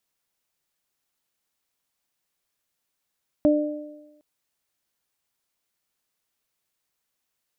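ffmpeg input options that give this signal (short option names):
-f lavfi -i "aevalsrc='0.178*pow(10,-3*t/1.03)*sin(2*PI*299*t)+0.141*pow(10,-3*t/1.07)*sin(2*PI*598*t)':d=0.76:s=44100"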